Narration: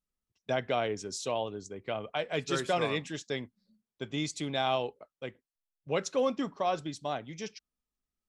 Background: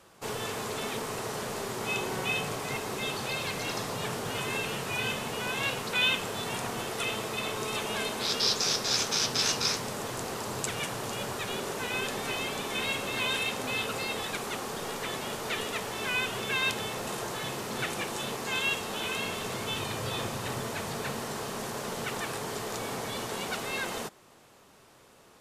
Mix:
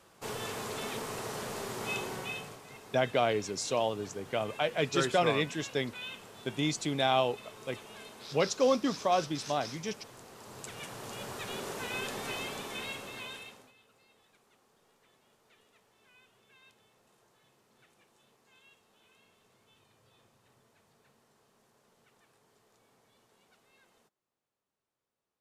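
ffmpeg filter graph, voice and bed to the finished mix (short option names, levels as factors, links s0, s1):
-filter_complex "[0:a]adelay=2450,volume=1.33[s0];[1:a]volume=2.66,afade=t=out:st=1.92:d=0.69:silence=0.223872,afade=t=in:st=10.33:d=1.31:silence=0.251189,afade=t=out:st=12.36:d=1.37:silence=0.0375837[s1];[s0][s1]amix=inputs=2:normalize=0"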